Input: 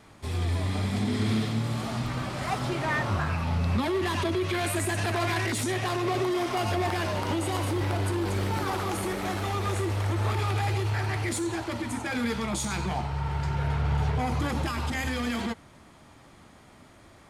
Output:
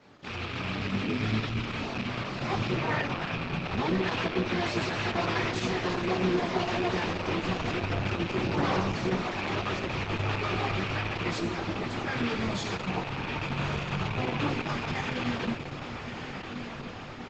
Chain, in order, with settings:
loose part that buzzes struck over −30 dBFS, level −21 dBFS
single-tap delay 143 ms −22.5 dB
pitch-shifted copies added −12 semitones −4 dB, −7 semitones −11 dB, +5 semitones −11 dB
high-pass filter 110 Hz 24 dB per octave
feedback delay with all-pass diffusion 1,229 ms, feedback 64%, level −8 dB
multi-voice chorus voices 4, 1.3 Hz, delay 19 ms, depth 3 ms
low-pass filter 5,700 Hz 24 dB per octave
Opus 10 kbit/s 48,000 Hz

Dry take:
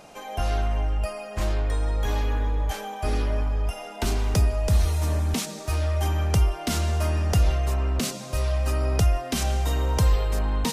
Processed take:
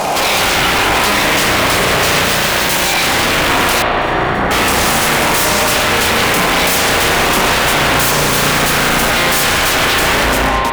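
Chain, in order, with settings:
fade-out on the ending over 1.00 s
high-pass filter 150 Hz 6 dB per octave
parametric band 890 Hz +10 dB 0.9 octaves
downward compressor 8 to 1, threshold −28 dBFS, peak gain reduction 10 dB
wrap-around overflow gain 31.5 dB
0:02.24–0:02.94: log-companded quantiser 2 bits
0:08.05–0:09.10: frequency shifter −57 Hz
fuzz pedal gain 49 dB, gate −52 dBFS
0:03.82–0:04.51: Savitzky-Golay smoothing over 41 samples
spring reverb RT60 4 s, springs 34 ms, chirp 70 ms, DRR 1.5 dB

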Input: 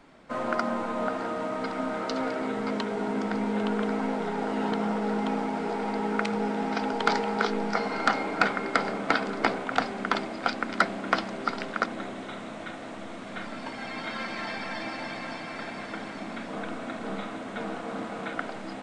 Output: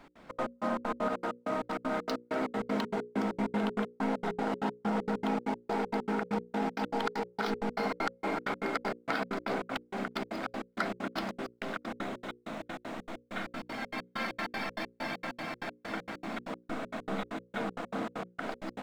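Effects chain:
running median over 5 samples
brickwall limiter −21.5 dBFS, peak gain reduction 10.5 dB
gate pattern "x.xx.x..xx." 195 BPM −60 dB
mains-hum notches 60/120/180/240/300/360/420/480/540 Hz

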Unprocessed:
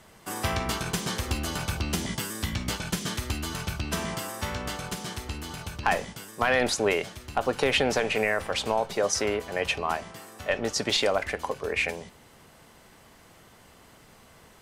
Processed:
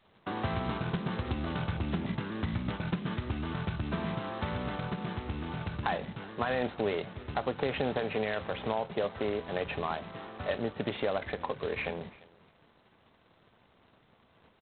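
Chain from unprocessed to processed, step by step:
high-pass filter 67 Hz 12 dB per octave
downward expander −44 dBFS
low-pass filter 1,600 Hz 12 dB per octave
dynamic equaliser 150 Hz, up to +5 dB, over −45 dBFS, Q 0.89
downward compressor 2 to 1, threshold −43 dBFS, peak gain reduction 13.5 dB
repeating echo 346 ms, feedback 15%, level −23 dB
level +5.5 dB
G.726 16 kbit/s 8,000 Hz

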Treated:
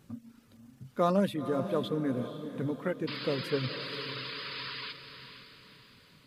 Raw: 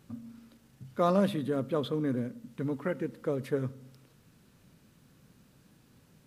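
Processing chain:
sound drawn into the spectrogram noise, 0:03.07–0:04.93, 940–5,100 Hz −39 dBFS
reverb reduction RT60 0.65 s
feedback delay with all-pass diffusion 486 ms, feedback 45%, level −10 dB

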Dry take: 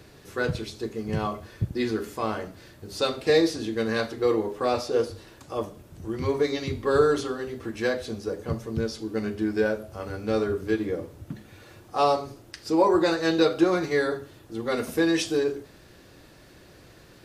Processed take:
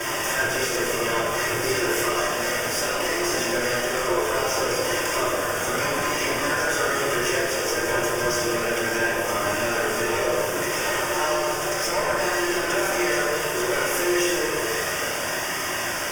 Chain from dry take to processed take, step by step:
compressor on every frequency bin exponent 0.6
noise gate with hold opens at −27 dBFS
high-pass filter 640 Hz 6 dB per octave
spectral tilt +2 dB per octave
downward compressor, threshold −32 dBFS, peak gain reduction 14 dB
fuzz pedal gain 37 dB, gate −45 dBFS
flanger 0.3 Hz, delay 1 ms, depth 1.5 ms, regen −47%
speed change +7%
Butterworth band-reject 4,100 Hz, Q 2.7
on a send: backwards echo 1,083 ms −5.5 dB
on the sum: rectangular room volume 1,300 cubic metres, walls mixed, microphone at 2.8 metres
level −7.5 dB

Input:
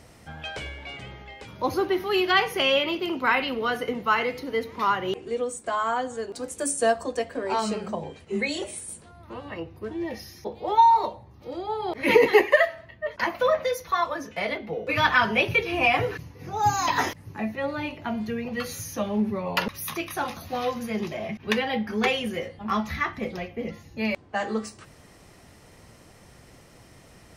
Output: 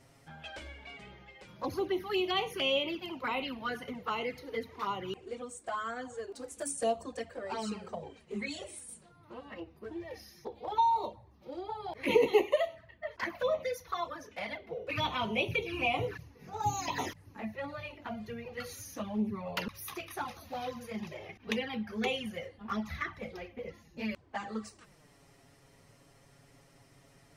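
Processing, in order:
flanger swept by the level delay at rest 8.3 ms, full sweep at −20 dBFS
level −6.5 dB

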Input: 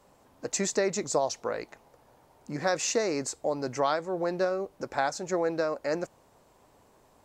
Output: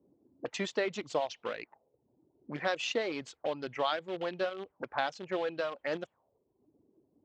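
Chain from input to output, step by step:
reverb reduction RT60 1 s
in parallel at −11.5 dB: bit reduction 5 bits
on the sum: high-pass filter 90 Hz 12 dB per octave
envelope-controlled low-pass 310–3,200 Hz up, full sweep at −28.5 dBFS
level −7 dB

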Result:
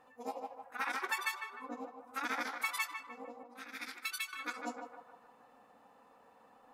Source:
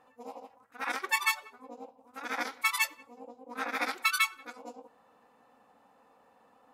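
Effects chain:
noise reduction from a noise print of the clip's start 8 dB
0:03.43–0:04.33: guitar amp tone stack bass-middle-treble 6-0-2
downward compressor 12 to 1, threshold −41 dBFS, peak gain reduction 19 dB
on a send: feedback echo with a band-pass in the loop 152 ms, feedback 54%, band-pass 1,000 Hz, level −5 dB
on the sum: level +7.5 dB

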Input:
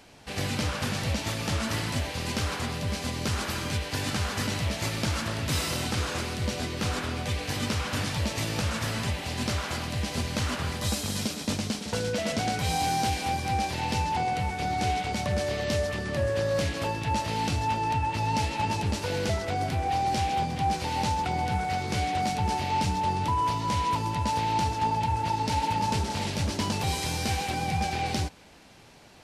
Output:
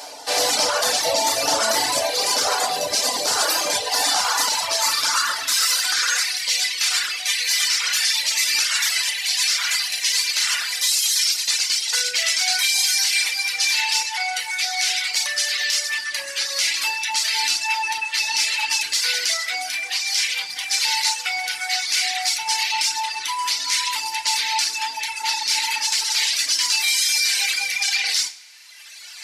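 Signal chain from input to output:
in parallel at −11 dB: soft clipping −33.5 dBFS, distortion −7 dB
on the sum: high shelf with overshoot 3,600 Hz +7.5 dB, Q 1.5
feedback delay network reverb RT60 0.63 s, low-frequency decay 1.2×, high-frequency decay 0.85×, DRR −0.5 dB
high-pass filter sweep 640 Hz → 2,100 Hz, 0:03.75–0:06.64
reversed playback
upward compression, threshold −37 dBFS
reversed playback
reverb reduction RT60 1.9 s
boost into a limiter +16.5 dB
level −8.5 dB

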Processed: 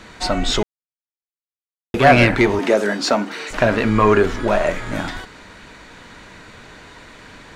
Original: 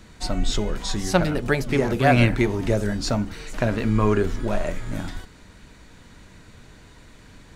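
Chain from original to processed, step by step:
0:02.59–0:03.51: high-pass filter 210 Hz 24 dB per octave
mid-hump overdrive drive 15 dB, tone 2,500 Hz, clips at −4.5 dBFS
0:00.63–0:01.94: silence
level +4 dB

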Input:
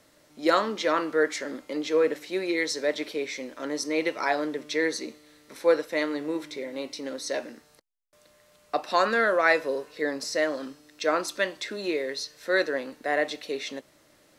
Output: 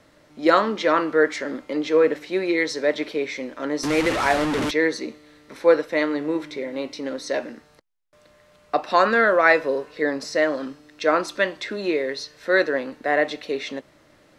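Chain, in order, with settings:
0:03.83–0:04.71: linear delta modulator 64 kbit/s, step −22.5 dBFS
low-pass filter 1,800 Hz 6 dB per octave
parametric band 460 Hz −3.5 dB 2.8 octaves
level +9 dB

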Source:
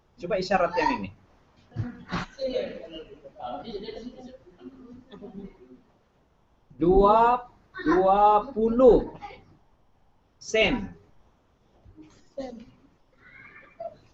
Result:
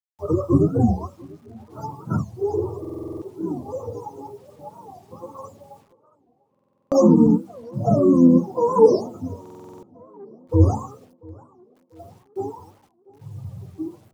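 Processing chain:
frequency axis turned over on the octave scale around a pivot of 460 Hz
Chebyshev band-stop filter 1,300–4,900 Hz, order 5
mains-hum notches 60/120/180/240 Hz
downward expander −55 dBFS
tilt shelving filter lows +5.5 dB, about 1,400 Hz
in parallel at −1 dB: downward compressor 10 to 1, threshold −27 dBFS, peak gain reduction 18.5 dB
on the sum: bit-depth reduction 10 bits, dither none
on a send: tape delay 692 ms, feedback 56%, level −22 dB, low-pass 2,300 Hz
on the sum: buffer that repeats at 0:02.80/0:06.50/0:09.41, samples 2,048, times 8
wow of a warped record 45 rpm, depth 250 cents

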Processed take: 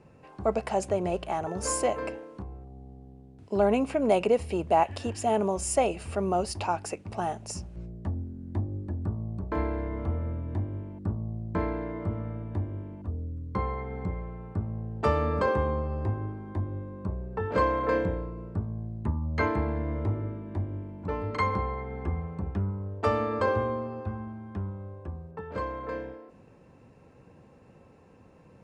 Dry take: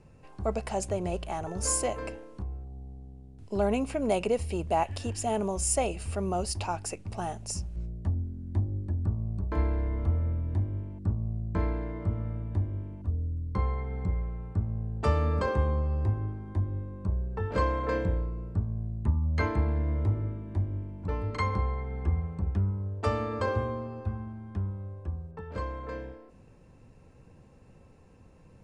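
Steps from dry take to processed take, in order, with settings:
high-pass filter 210 Hz 6 dB per octave
high-shelf EQ 3,900 Hz −10 dB
level +5 dB

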